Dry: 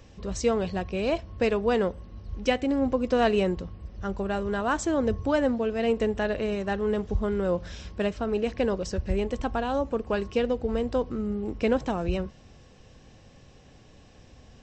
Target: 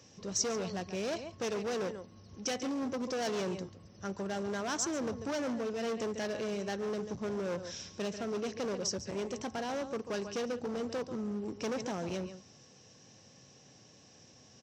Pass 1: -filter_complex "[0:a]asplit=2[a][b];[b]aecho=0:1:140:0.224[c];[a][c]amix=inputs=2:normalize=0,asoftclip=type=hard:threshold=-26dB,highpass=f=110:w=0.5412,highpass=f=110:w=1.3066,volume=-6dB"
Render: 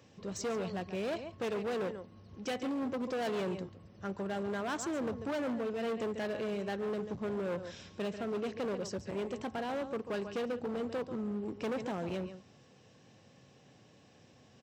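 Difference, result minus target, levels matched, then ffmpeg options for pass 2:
8000 Hz band -10.0 dB
-filter_complex "[0:a]asplit=2[a][b];[b]aecho=0:1:140:0.224[c];[a][c]amix=inputs=2:normalize=0,asoftclip=type=hard:threshold=-26dB,highpass=f=110:w=0.5412,highpass=f=110:w=1.3066,equalizer=f=5.8k:w=2.2:g=14.5,volume=-6dB"

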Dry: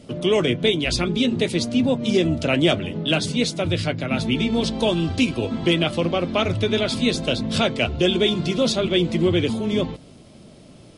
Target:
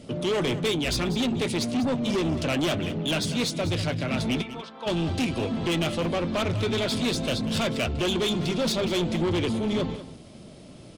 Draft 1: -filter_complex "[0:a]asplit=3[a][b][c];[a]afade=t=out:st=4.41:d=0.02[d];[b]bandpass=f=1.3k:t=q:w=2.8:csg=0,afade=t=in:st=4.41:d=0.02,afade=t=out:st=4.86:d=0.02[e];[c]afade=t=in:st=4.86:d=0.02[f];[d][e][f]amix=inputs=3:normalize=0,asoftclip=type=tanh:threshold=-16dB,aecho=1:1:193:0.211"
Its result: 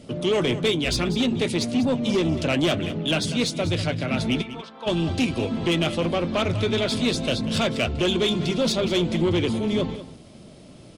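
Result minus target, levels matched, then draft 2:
soft clip: distortion -6 dB
-filter_complex "[0:a]asplit=3[a][b][c];[a]afade=t=out:st=4.41:d=0.02[d];[b]bandpass=f=1.3k:t=q:w=2.8:csg=0,afade=t=in:st=4.41:d=0.02,afade=t=out:st=4.86:d=0.02[e];[c]afade=t=in:st=4.86:d=0.02[f];[d][e][f]amix=inputs=3:normalize=0,asoftclip=type=tanh:threshold=-22dB,aecho=1:1:193:0.211"

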